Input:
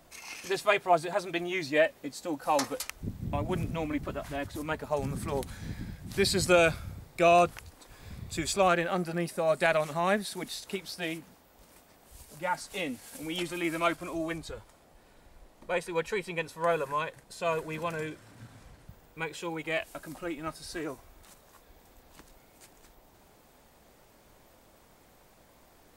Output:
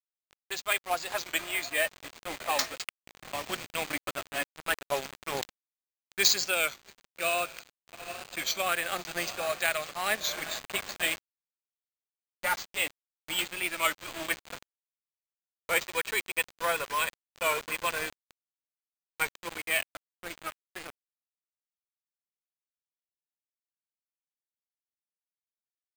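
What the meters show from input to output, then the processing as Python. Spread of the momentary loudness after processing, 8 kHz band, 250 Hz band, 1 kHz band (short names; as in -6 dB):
13 LU, +6.0 dB, -11.5 dB, -3.0 dB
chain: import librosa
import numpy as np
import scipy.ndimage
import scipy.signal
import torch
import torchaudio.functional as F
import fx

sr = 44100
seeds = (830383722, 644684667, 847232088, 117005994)

y = scipy.signal.sosfilt(scipy.signal.butter(2, 41.0, 'highpass', fs=sr, output='sos'), x)
y = fx.echo_diffused(y, sr, ms=779, feedback_pct=53, wet_db=-13.5)
y = fx.env_lowpass(y, sr, base_hz=840.0, full_db=-23.5)
y = fx.weighting(y, sr, curve='ITU-R 468')
y = fx.quant_companded(y, sr, bits=4)
y = fx.notch(y, sr, hz=930.0, q=12.0)
y = fx.quant_dither(y, sr, seeds[0], bits=6, dither='none')
y = np.repeat(scipy.signal.resample_poly(y, 1, 4), 4)[:len(y)]
y = fx.rider(y, sr, range_db=5, speed_s=0.5)
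y = fx.record_warp(y, sr, rpm=33.33, depth_cents=100.0)
y = y * librosa.db_to_amplitude(-2.0)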